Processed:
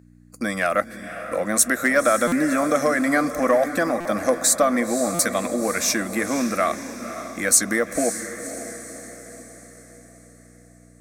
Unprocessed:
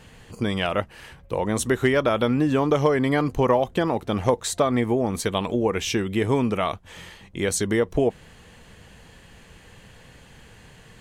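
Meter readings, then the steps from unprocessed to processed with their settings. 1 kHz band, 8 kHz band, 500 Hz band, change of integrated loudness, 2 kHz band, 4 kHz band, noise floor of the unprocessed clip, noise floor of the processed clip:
+2.5 dB, +12.0 dB, +0.5 dB, +2.0 dB, +6.5 dB, 0.0 dB, -50 dBFS, -50 dBFS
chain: gate -37 dBFS, range -28 dB; fixed phaser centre 610 Hz, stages 8; diffused feedback echo 0.53 s, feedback 50%, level -11 dB; hum 60 Hz, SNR 19 dB; HPF 100 Hz 6 dB/oct; tilt +2.5 dB/oct; in parallel at -7.5 dB: soft clip -19 dBFS, distortion -15 dB; on the sum: stuck buffer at 2.27/4/5.14, samples 256, times 8; gain +3.5 dB

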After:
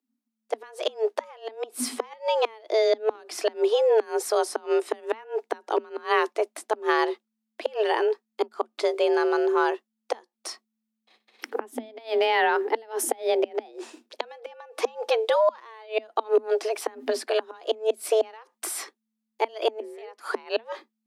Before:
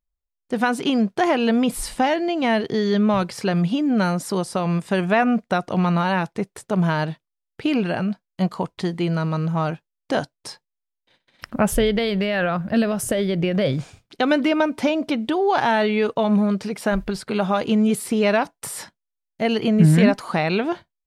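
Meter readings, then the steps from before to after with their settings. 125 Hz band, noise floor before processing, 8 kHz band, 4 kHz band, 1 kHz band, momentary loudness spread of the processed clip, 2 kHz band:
under -40 dB, -82 dBFS, -2.0 dB, -4.5 dB, -4.0 dB, 15 LU, -6.0 dB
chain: flipped gate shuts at -11 dBFS, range -27 dB; frequency shift +220 Hz

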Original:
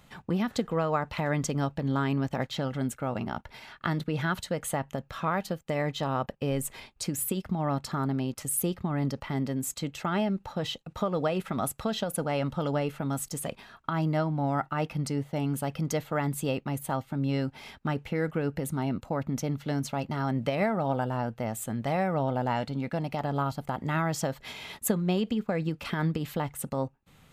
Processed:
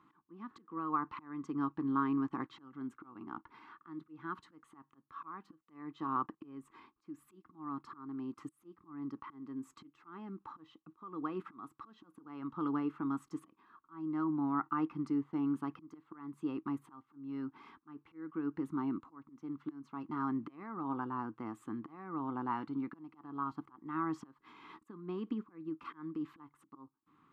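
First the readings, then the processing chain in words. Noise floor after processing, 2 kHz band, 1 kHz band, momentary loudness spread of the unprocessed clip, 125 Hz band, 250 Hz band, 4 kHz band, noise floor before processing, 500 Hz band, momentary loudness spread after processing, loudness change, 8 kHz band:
-77 dBFS, -15.5 dB, -8.0 dB, 6 LU, -20.0 dB, -7.0 dB, under -20 dB, -60 dBFS, -18.0 dB, 20 LU, -9.0 dB, under -30 dB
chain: auto swell 0.484 s; double band-pass 590 Hz, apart 1.8 oct; gain +5 dB

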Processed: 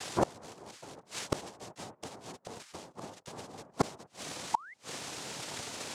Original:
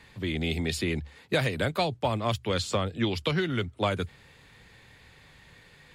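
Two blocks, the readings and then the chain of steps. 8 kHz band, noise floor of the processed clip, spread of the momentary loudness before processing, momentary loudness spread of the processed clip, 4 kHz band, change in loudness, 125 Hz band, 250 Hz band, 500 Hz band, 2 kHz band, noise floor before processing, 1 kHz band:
+1.5 dB, -66 dBFS, 4 LU, 12 LU, -9.5 dB, -10.5 dB, -14.5 dB, -10.0 dB, -9.5 dB, -12.0 dB, -56 dBFS, -3.5 dB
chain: noise vocoder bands 2; painted sound rise, 4.54–4.74, 870–2200 Hz -30 dBFS; flipped gate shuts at -27 dBFS, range -32 dB; gain +13 dB

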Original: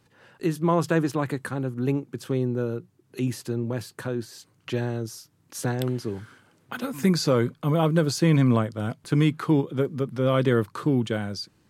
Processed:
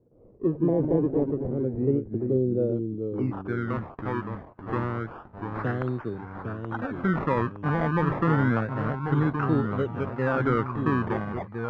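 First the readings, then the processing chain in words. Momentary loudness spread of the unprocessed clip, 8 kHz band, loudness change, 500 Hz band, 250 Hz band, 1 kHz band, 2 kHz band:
12 LU, under -30 dB, -1.5 dB, -1.0 dB, -1.5 dB, +2.0 dB, +1.0 dB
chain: bell 920 Hz -12.5 dB 0.3 oct; in parallel at +0.5 dB: limiter -17 dBFS, peak gain reduction 7.5 dB; on the sum: decimation with a swept rate 22×, swing 100% 0.29 Hz; low-pass sweep 480 Hz -> 1400 Hz, 2.44–3.58; echoes that change speed 0.114 s, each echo -2 st, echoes 2, each echo -6 dB; gain -8.5 dB

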